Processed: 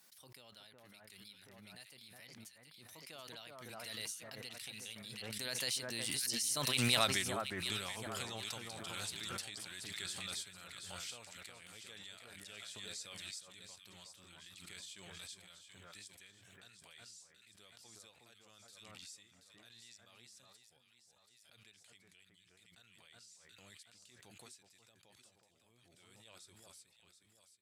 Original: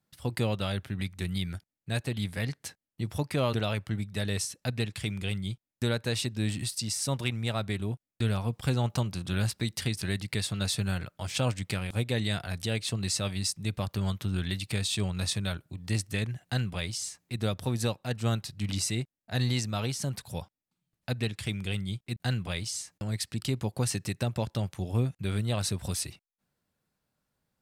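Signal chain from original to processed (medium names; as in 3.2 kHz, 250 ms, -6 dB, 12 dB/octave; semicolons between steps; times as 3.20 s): Doppler pass-by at 7.03 s, 25 m/s, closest 3 m; high-pass 860 Hz 6 dB/octave; treble shelf 2.5 kHz +10 dB; gain riding within 4 dB 0.5 s; echo whose repeats swap between lows and highs 365 ms, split 1.6 kHz, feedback 56%, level -4 dB; swell ahead of each attack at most 20 dB/s; trim +4 dB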